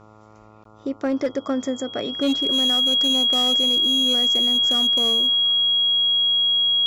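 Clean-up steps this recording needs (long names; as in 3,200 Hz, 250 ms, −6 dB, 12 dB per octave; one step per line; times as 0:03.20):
clipped peaks rebuilt −15.5 dBFS
hum removal 107.5 Hz, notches 13
notch filter 3,300 Hz, Q 30
repair the gap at 0:00.64, 13 ms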